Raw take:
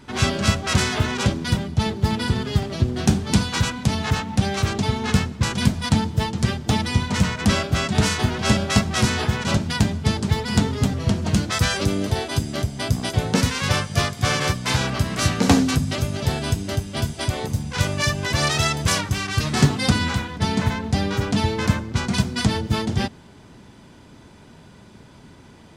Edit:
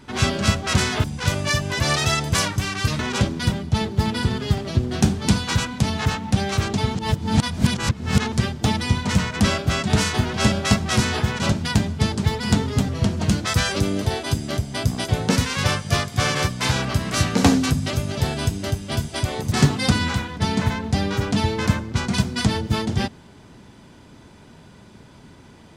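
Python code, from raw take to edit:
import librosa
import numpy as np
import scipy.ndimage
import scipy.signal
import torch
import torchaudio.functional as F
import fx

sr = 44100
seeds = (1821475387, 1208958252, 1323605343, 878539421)

y = fx.edit(x, sr, fx.reverse_span(start_s=5.0, length_s=1.37),
    fx.move(start_s=17.57, length_s=1.95, to_s=1.04), tone=tone)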